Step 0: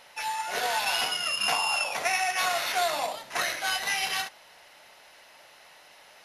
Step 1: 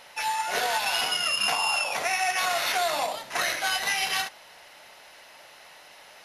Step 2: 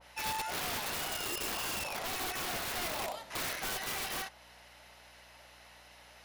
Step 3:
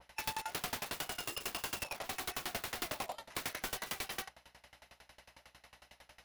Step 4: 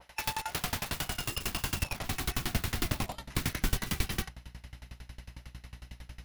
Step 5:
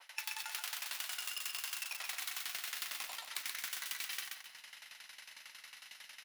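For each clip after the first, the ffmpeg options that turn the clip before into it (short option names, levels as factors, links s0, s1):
-af "alimiter=limit=0.106:level=0:latency=1:release=129,volume=1.5"
-af "aeval=exprs='val(0)+0.00126*(sin(2*PI*60*n/s)+sin(2*PI*2*60*n/s)/2+sin(2*PI*3*60*n/s)/3+sin(2*PI*4*60*n/s)/4+sin(2*PI*5*60*n/s)/5)':c=same,aeval=exprs='(mod(13.3*val(0)+1,2)-1)/13.3':c=same,adynamicequalizer=threshold=0.01:dfrequency=1800:dqfactor=0.7:tfrequency=1800:tqfactor=0.7:attack=5:release=100:ratio=0.375:range=1.5:mode=cutabove:tftype=highshelf,volume=0.447"
-af "aeval=exprs='val(0)*pow(10,-25*if(lt(mod(11*n/s,1),2*abs(11)/1000),1-mod(11*n/s,1)/(2*abs(11)/1000),(mod(11*n/s,1)-2*abs(11)/1000)/(1-2*abs(11)/1000))/20)':c=same,volume=1.41"
-af "asubboost=boost=12:cutoff=190,volume=1.78"
-filter_complex "[0:a]highpass=1500,acompressor=threshold=0.00794:ratio=6,asplit=2[s0][s1];[s1]aecho=0:1:129|258|387|516:0.631|0.17|0.046|0.0124[s2];[s0][s2]amix=inputs=2:normalize=0,volume=1.5"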